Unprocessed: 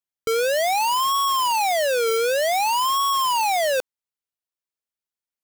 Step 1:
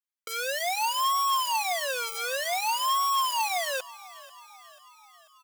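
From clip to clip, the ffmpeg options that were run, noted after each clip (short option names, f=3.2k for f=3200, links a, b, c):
-filter_complex "[0:a]highpass=900,aecho=1:1:5.6:0.59,asplit=6[a][b][c][d][e][f];[b]adelay=490,afreqshift=39,volume=-20dB[g];[c]adelay=980,afreqshift=78,volume=-24.4dB[h];[d]adelay=1470,afreqshift=117,volume=-28.9dB[i];[e]adelay=1960,afreqshift=156,volume=-33.3dB[j];[f]adelay=2450,afreqshift=195,volume=-37.7dB[k];[a][g][h][i][j][k]amix=inputs=6:normalize=0,volume=-5.5dB"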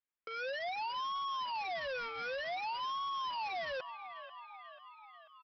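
-af "lowpass=f=2.9k:w=0.5412,lowpass=f=2.9k:w=1.3066,aresample=11025,asoftclip=type=tanh:threshold=-36.5dB,aresample=44100"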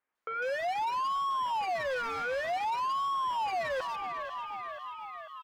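-filter_complex "[0:a]acrusher=bits=6:mode=log:mix=0:aa=0.000001,asplit=2[a][b];[b]highpass=f=720:p=1,volume=16dB,asoftclip=type=tanh:threshold=-33dB[c];[a][c]amix=inputs=2:normalize=0,lowpass=f=1.5k:p=1,volume=-6dB,acrossover=split=2700[d][e];[e]adelay=150[f];[d][f]amix=inputs=2:normalize=0,volume=7dB"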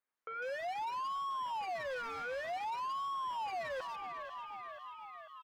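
-af "bandreject=f=50:t=h:w=6,bandreject=f=100:t=h:w=6,volume=-7dB"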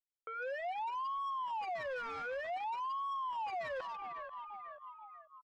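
-af "anlmdn=0.0398"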